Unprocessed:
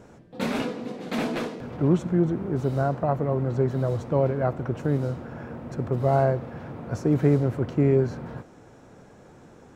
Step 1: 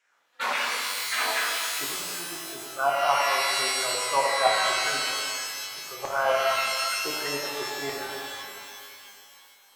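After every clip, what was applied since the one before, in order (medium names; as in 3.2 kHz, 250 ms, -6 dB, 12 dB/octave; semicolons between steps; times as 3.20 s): spectral noise reduction 15 dB; LFO high-pass saw down 3.8 Hz 830–2300 Hz; pitch-shifted reverb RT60 2.2 s, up +12 st, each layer -2 dB, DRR -2 dB; trim +1.5 dB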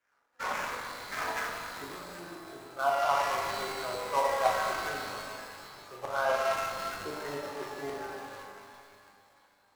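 median filter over 15 samples; on a send: flutter echo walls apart 6.9 m, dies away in 0.32 s; on the sum: trim -4 dB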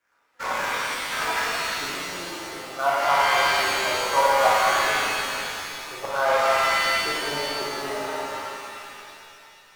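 pitch-shifted reverb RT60 1.8 s, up +7 st, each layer -2 dB, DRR 0.5 dB; trim +4.5 dB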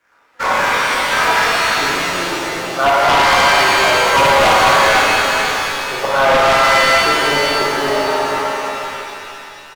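treble shelf 5.1 kHz -6.5 dB; sine folder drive 9 dB, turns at -8 dBFS; delay 490 ms -7.5 dB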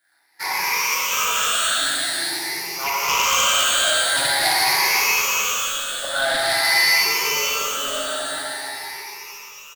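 drifting ripple filter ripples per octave 0.8, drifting +0.47 Hz, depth 16 dB; pre-emphasis filter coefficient 0.9; trim +1.5 dB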